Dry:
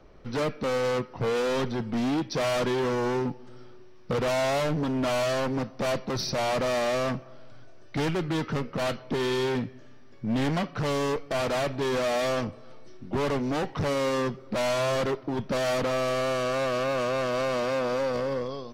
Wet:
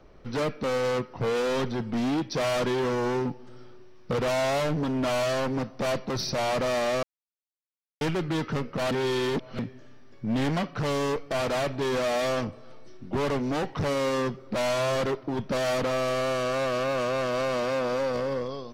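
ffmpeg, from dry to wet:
-filter_complex "[0:a]asplit=5[a][b][c][d][e];[a]atrim=end=7.03,asetpts=PTS-STARTPTS,afade=t=out:st=7.026:d=0.004:c=hsin[f];[b]atrim=start=7.03:end=8.01,asetpts=PTS-STARTPTS,volume=0[g];[c]atrim=start=8.01:end=8.912,asetpts=PTS-STARTPTS,afade=t=in:d=0.004:c=hsin[h];[d]atrim=start=8.908:end=9.592,asetpts=PTS-STARTPTS,areverse[i];[e]atrim=start=9.588[j];[f][g][h]concat=n=3:v=0:a=1[k];[k][i]acrossfade=d=0.004:c1=hsin:c2=hsin[l];[l][j]acrossfade=d=0.004:c1=hsin:c2=hsin"

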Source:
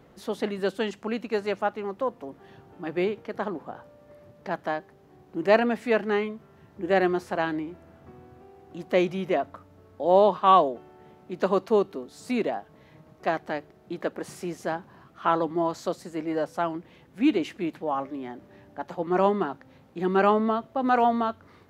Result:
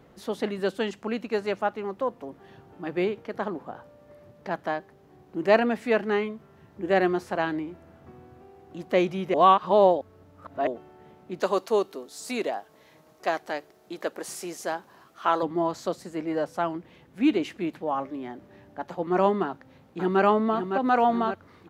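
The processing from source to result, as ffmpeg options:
-filter_complex "[0:a]asettb=1/sr,asplit=3[a][b][c];[a]atrim=end=11.404[d];[b]atrim=start=11.4:end=15.43,asetpts=PTS-STARTPTS,afade=t=in:d=0.004:c=qsin,afade=t=out:st=4.026:d=0.004:c=qsin,bass=f=250:g=-12,treble=f=4k:g=9[e];[c]atrim=start=15.426[f];[d][e]acrossfade=d=0.004:c1=hsin:c2=qsin[g];[g][f]acrossfade=d=0.004:c1=qsin:c2=hsin,asplit=2[h][i];[i]afade=t=in:st=19.43:d=0.01,afade=t=out:st=20.22:d=0.01,aecho=0:1:560|1120|1680|2240|2800|3360|3920|4480:0.446684|0.26801|0.160806|0.0964837|0.0578902|0.0347341|0.0208405|0.0125043[j];[h][j]amix=inputs=2:normalize=0,asplit=3[k][l][m];[k]atrim=end=9.342[n];[l]atrim=start=9.338:end=10.672,asetpts=PTS-STARTPTS,areverse[o];[m]atrim=start=10.668[p];[n][o]acrossfade=d=0.004:c1=hsin:c2=hsin[q];[q][p]acrossfade=d=0.004:c1=hsin:c2=hsin"

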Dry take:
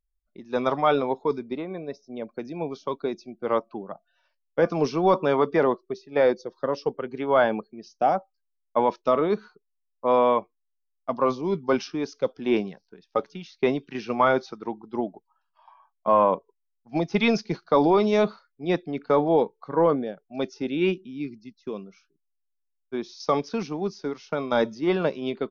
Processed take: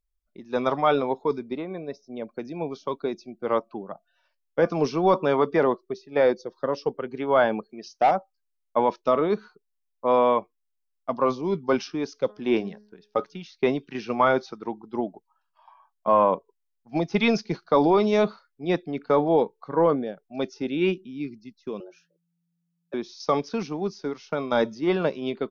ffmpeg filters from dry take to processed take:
-filter_complex "[0:a]asettb=1/sr,asplit=3[a][b][c];[a]atrim=end=7.694[d];[b]atrim=start=7.69:end=8.11,asetpts=PTS-STARTPTS,afade=t=in:d=0.004:c=qsin,afade=t=out:st=0.416:d=0.004:c=qsin,asplit=2[e][f];[f]highpass=f=720:p=1,volume=13dB,asoftclip=type=tanh:threshold=-11dB[g];[e][g]amix=inputs=2:normalize=0,lowpass=f=5.8k:p=1,volume=-6dB[h];[c]atrim=start=8.106[i];[d][h]acrossfade=d=0.004:c1=hsin:c2=qsin[j];[j][i]acrossfade=d=0.004:c1=qsin:c2=hsin,asplit=3[k][l][m];[k]afade=t=out:st=12.28:d=0.02[n];[l]bandreject=f=209.2:t=h:w=4,bandreject=f=418.4:t=h:w=4,bandreject=f=627.6:t=h:w=4,bandreject=f=836.8:t=h:w=4,bandreject=f=1.046k:t=h:w=4,bandreject=f=1.2552k:t=h:w=4,bandreject=f=1.4644k:t=h:w=4,bandreject=f=1.6736k:t=h:w=4,bandreject=f=1.8828k:t=h:w=4,afade=t=in:st=12.28:d=0.02,afade=t=out:st=13.23:d=0.02[o];[m]afade=t=in:st=13.23:d=0.02[p];[n][o][p]amix=inputs=3:normalize=0,asettb=1/sr,asplit=3[q][r][s];[q]atrim=end=21.804[t];[r]atrim=start=21.8:end=22.94,asetpts=PTS-STARTPTS,afade=t=in:d=0.004:c=qsin,afade=t=out:st=1.136:d=0.004:c=qsin,afreqshift=170[u];[s]atrim=start=22.936[v];[t][u]acrossfade=d=0.004:c1=hsin:c2=qsin[w];[w][v]acrossfade=d=0.004:c1=qsin:c2=hsin"

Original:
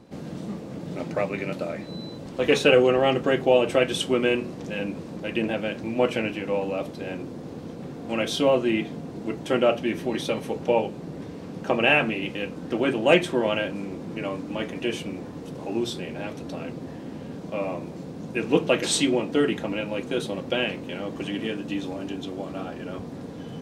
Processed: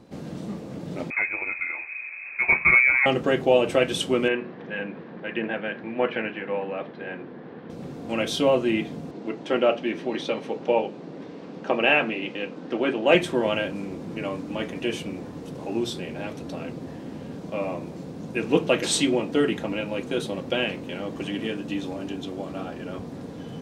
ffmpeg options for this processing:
-filter_complex "[0:a]asettb=1/sr,asplit=3[a][b][c];[a]atrim=end=1.104[d];[b]atrim=start=1.1:end=3.06,asetpts=PTS-STARTPTS,afade=t=in:d=0.004:c=qsin,afade=t=out:st=1.956:d=0.004:c=qsin,lowpass=f=2.3k:t=q:w=0.5098,lowpass=f=2.3k:t=q:w=0.6013,lowpass=f=2.3k:t=q:w=0.9,lowpass=f=2.3k:t=q:w=2.563,afreqshift=-2700[e];[c]atrim=start=3.056[f];[d][e]acrossfade=d=0.004:c1=hsin:c2=qsin[g];[g][f]acrossfade=d=0.004:c1=qsin:c2=hsin,asettb=1/sr,asplit=3[h][i][j];[h]atrim=end=4.284[k];[i]atrim=start=4.28:end=7.7,asetpts=PTS-STARTPTS,afade=t=in:d=0.004:c=qsin,afade=t=out:st=3.416:d=0.004:c=qsin,highpass=210,equalizer=f=290:t=q:w=4:g=-6,equalizer=f=580:t=q:w=4:g=-4,equalizer=f=1.7k:t=q:w=4:g=8,equalizer=f=2.6k:t=q:w=4:g=-3,lowpass=f=3.1k:w=0.5412,lowpass=f=3.1k:w=1.3066[l];[j]atrim=start=7.696[m];[k][l]acrossfade=d=0.004:c1=hsin:c2=qsin[n];[n][m]acrossfade=d=0.004:c1=qsin:c2=hsin,asettb=1/sr,asplit=3[o][p][q];[o]atrim=end=9.114[r];[p]atrim=start=9.11:end=13.15,asetpts=PTS-STARTPTS,afade=t=in:d=0.004:c=qsin,afade=t=out:st=4.036:d=0.004:c=qsin,highpass=220,lowpass=4.7k[s];[q]atrim=start=13.146[t];[r][s]acrossfade=d=0.004:c1=hsin:c2=qsin[u];[u][t]acrossfade=d=0.004:c1=qsin:c2=hsin"

